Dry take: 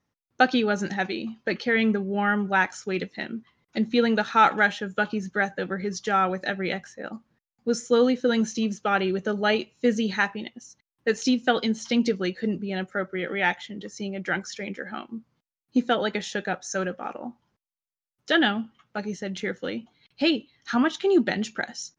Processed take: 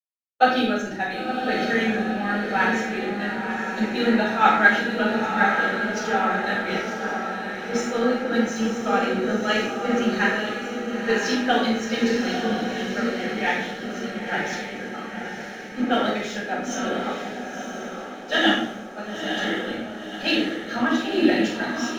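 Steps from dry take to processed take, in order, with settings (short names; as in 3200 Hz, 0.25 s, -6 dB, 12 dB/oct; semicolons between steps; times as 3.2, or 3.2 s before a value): harmonic-percussive split percussive +5 dB; on a send: diffused feedback echo 0.974 s, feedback 58%, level -3.5 dB; on the sum: backlash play -38.5 dBFS; shoebox room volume 210 m³, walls mixed, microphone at 6.3 m; three-band expander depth 40%; gain -18 dB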